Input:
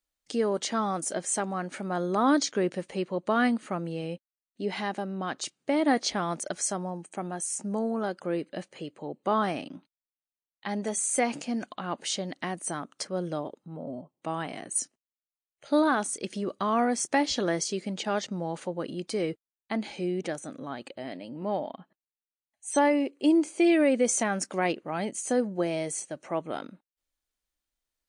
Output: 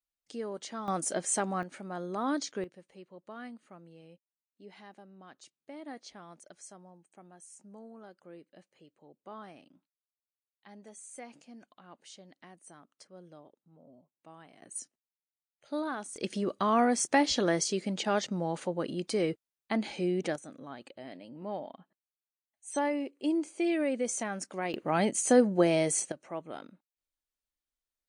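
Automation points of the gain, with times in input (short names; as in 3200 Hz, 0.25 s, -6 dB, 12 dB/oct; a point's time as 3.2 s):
-11 dB
from 0.88 s -1 dB
from 1.63 s -8.5 dB
from 2.64 s -20 dB
from 14.62 s -11 dB
from 16.16 s 0 dB
from 20.36 s -7.5 dB
from 24.74 s +4 dB
from 26.12 s -8 dB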